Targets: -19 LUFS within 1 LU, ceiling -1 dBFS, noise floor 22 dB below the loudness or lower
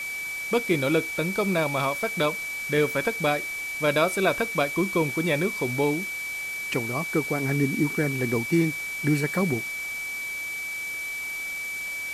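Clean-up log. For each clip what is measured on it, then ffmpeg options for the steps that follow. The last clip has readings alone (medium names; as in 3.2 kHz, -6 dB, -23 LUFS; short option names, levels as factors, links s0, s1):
steady tone 2.3 kHz; tone level -30 dBFS; noise floor -33 dBFS; noise floor target -48 dBFS; loudness -25.5 LUFS; peak level -8.5 dBFS; loudness target -19.0 LUFS
-> -af "bandreject=f=2300:w=30"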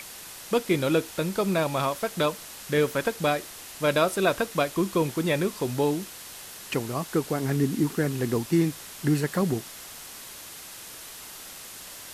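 steady tone not found; noise floor -43 dBFS; noise floor target -49 dBFS
-> -af "afftdn=nr=6:nf=-43"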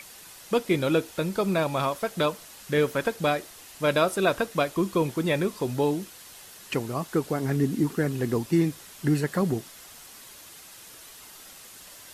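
noise floor -47 dBFS; noise floor target -49 dBFS
-> -af "afftdn=nr=6:nf=-47"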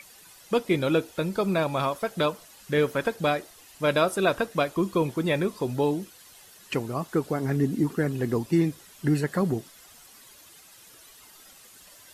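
noise floor -52 dBFS; loudness -26.5 LUFS; peak level -9.0 dBFS; loudness target -19.0 LUFS
-> -af "volume=2.37"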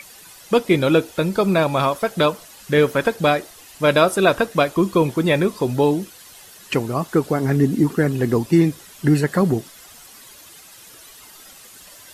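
loudness -19.0 LUFS; peak level -1.5 dBFS; noise floor -44 dBFS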